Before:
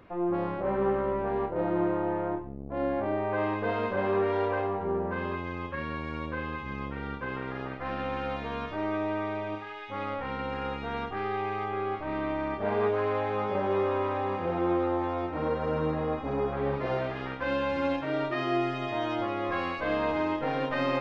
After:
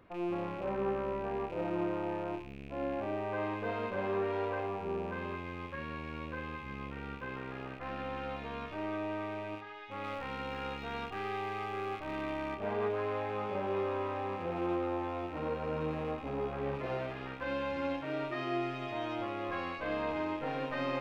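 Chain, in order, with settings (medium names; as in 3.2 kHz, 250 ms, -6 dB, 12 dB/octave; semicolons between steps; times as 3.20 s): rattle on loud lows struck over -45 dBFS, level -35 dBFS; 10.04–12.55 s: treble shelf 2.9 kHz +8 dB; trim -6.5 dB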